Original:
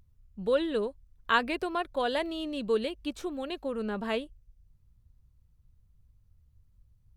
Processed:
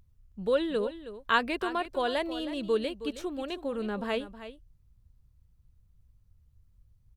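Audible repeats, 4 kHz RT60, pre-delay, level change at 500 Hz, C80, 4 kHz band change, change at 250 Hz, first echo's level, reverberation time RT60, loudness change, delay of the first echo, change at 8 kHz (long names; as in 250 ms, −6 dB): 1, no reverb audible, no reverb audible, 0.0 dB, no reverb audible, 0.0 dB, 0.0 dB, −13.0 dB, no reverb audible, 0.0 dB, 318 ms, 0.0 dB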